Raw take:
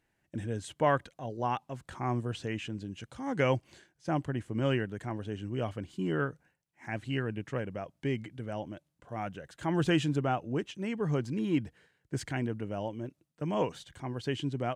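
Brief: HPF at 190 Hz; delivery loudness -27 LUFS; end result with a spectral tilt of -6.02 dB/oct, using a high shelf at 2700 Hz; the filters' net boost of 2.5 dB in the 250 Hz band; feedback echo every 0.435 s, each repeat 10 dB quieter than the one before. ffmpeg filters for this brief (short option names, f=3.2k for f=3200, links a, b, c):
-af "highpass=190,equalizer=f=250:t=o:g=5,highshelf=f=2.7k:g=-6.5,aecho=1:1:435|870|1305|1740:0.316|0.101|0.0324|0.0104,volume=6.5dB"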